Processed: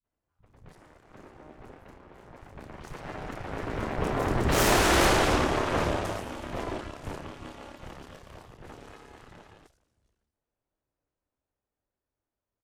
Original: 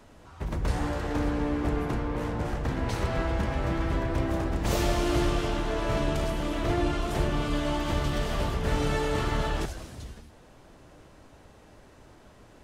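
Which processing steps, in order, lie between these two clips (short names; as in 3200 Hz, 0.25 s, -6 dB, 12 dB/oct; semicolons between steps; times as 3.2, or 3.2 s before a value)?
Doppler pass-by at 4.91, 15 m/s, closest 6.3 m; added harmonics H 3 -11 dB, 8 -8 dB, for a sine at -14.5 dBFS; three bands offset in time lows, mids, highs 40/70 ms, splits 190/3800 Hz; gain +4 dB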